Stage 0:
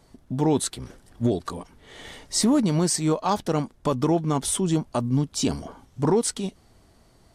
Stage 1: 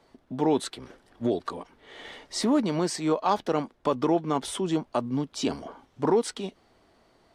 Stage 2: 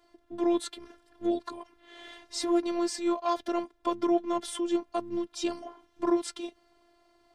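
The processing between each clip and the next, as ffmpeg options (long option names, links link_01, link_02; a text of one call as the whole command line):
ffmpeg -i in.wav -filter_complex "[0:a]acrossover=split=250 4500:gain=0.224 1 0.224[link_01][link_02][link_03];[link_01][link_02][link_03]amix=inputs=3:normalize=0" out.wav
ffmpeg -i in.wav -af "afftfilt=real='hypot(re,im)*cos(PI*b)':imag='0':win_size=512:overlap=0.75" out.wav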